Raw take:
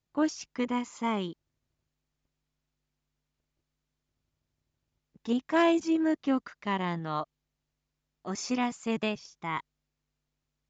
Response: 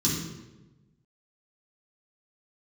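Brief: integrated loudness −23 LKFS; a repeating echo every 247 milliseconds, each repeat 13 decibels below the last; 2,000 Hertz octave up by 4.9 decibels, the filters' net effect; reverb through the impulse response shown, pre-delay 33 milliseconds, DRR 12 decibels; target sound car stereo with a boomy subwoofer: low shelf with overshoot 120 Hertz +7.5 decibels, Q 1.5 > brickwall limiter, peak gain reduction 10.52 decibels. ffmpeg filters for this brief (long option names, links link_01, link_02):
-filter_complex "[0:a]equalizer=frequency=2000:width_type=o:gain=6,aecho=1:1:247|494|741:0.224|0.0493|0.0108,asplit=2[link_01][link_02];[1:a]atrim=start_sample=2205,adelay=33[link_03];[link_02][link_03]afir=irnorm=-1:irlink=0,volume=-20.5dB[link_04];[link_01][link_04]amix=inputs=2:normalize=0,lowshelf=frequency=120:width_type=q:width=1.5:gain=7.5,volume=8.5dB,alimiter=limit=-13.5dB:level=0:latency=1"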